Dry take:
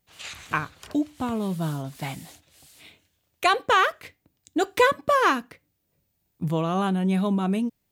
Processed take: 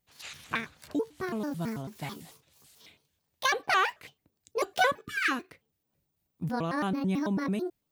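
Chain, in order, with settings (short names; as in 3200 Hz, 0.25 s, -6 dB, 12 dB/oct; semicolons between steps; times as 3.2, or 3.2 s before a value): trilling pitch shifter +7 st, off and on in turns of 0.11 s; spectral delete 5.05–5.31, 450–1200 Hz; gain -5.5 dB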